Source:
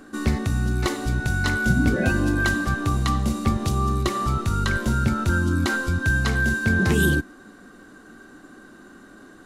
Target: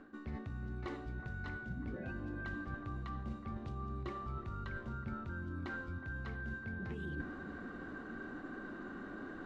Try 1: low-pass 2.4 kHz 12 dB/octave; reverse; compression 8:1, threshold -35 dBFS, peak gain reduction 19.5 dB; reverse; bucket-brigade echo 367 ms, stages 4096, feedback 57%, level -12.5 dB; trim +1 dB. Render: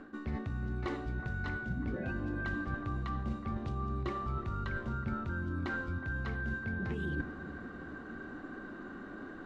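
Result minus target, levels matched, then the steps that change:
compression: peak gain reduction -6 dB
change: compression 8:1, threshold -42 dBFS, peak gain reduction 25.5 dB

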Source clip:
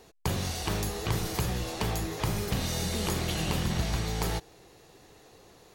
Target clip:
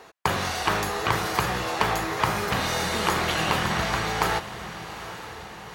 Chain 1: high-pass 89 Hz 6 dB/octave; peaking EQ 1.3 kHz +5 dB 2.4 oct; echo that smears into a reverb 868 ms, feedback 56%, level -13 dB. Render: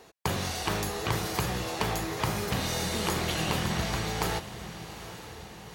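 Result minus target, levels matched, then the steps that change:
1 kHz band -3.0 dB
change: peaking EQ 1.3 kHz +15 dB 2.4 oct

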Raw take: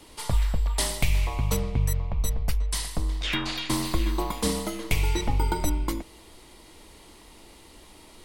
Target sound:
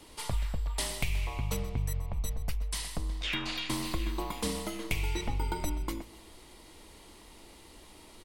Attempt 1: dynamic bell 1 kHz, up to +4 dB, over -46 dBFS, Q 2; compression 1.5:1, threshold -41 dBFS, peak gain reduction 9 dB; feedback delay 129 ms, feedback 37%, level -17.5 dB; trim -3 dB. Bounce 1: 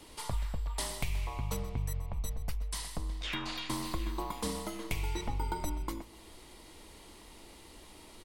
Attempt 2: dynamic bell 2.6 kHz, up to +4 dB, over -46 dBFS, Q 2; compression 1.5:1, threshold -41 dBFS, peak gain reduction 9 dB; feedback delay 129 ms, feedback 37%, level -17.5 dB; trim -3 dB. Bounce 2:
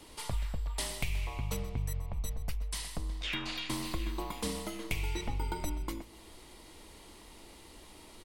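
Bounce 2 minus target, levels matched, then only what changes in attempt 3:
compression: peak gain reduction +2.5 dB
change: compression 1.5:1, threshold -33 dBFS, peak gain reduction 6.5 dB

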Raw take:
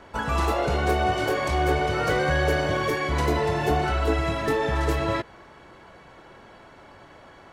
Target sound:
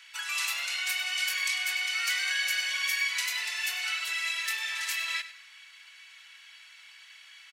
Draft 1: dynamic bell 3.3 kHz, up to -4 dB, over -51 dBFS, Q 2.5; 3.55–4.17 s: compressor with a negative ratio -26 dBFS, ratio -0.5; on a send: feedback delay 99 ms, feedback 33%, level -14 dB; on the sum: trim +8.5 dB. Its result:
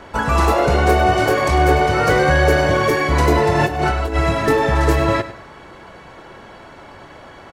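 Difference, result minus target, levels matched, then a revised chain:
2 kHz band -5.0 dB
dynamic bell 3.3 kHz, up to -4 dB, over -51 dBFS, Q 2.5; Chebyshev high-pass 2.4 kHz, order 3; 3.55–4.17 s: compressor with a negative ratio -26 dBFS, ratio -0.5; on a send: feedback delay 99 ms, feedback 33%, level -14 dB; on the sum: trim +8.5 dB

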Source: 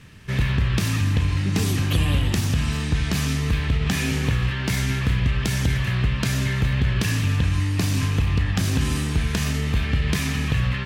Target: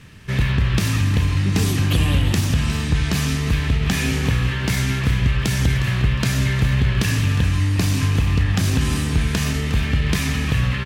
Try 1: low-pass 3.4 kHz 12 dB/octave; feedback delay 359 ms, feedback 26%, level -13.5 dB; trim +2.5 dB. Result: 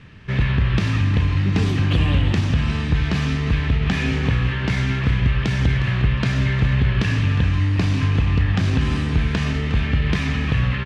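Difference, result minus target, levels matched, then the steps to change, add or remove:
4 kHz band -3.0 dB
remove: low-pass 3.4 kHz 12 dB/octave

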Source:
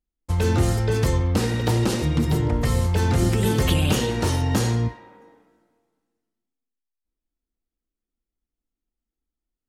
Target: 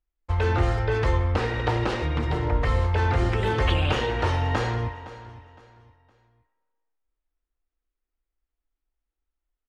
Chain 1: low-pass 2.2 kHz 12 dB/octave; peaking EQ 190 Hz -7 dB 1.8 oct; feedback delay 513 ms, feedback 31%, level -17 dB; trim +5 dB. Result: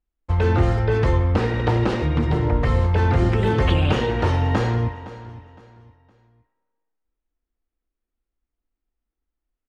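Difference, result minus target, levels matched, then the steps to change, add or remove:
250 Hz band +3.5 dB
change: peaking EQ 190 Hz -18 dB 1.8 oct

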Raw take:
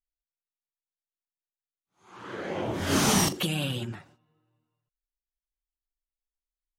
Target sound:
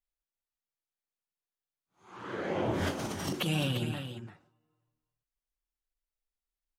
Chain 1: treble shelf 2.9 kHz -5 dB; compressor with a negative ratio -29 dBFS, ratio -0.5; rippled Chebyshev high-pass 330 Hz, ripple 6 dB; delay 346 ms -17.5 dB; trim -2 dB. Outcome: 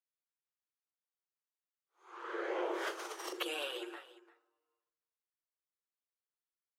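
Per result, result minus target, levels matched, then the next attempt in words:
echo-to-direct -8.5 dB; 250 Hz band -5.5 dB
treble shelf 2.9 kHz -5 dB; compressor with a negative ratio -29 dBFS, ratio -0.5; rippled Chebyshev high-pass 330 Hz, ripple 6 dB; delay 346 ms -9 dB; trim -2 dB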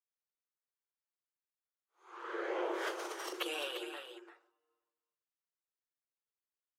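250 Hz band -5.5 dB
treble shelf 2.9 kHz -5 dB; compressor with a negative ratio -29 dBFS, ratio -0.5; delay 346 ms -9 dB; trim -2 dB

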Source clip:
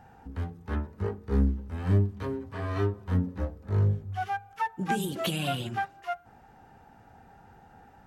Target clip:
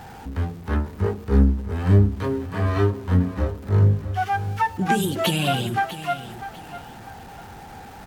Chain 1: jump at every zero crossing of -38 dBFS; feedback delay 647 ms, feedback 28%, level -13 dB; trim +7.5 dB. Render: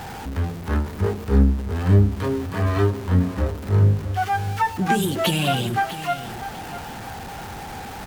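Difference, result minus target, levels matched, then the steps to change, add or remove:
jump at every zero crossing: distortion +9 dB
change: jump at every zero crossing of -47.5 dBFS

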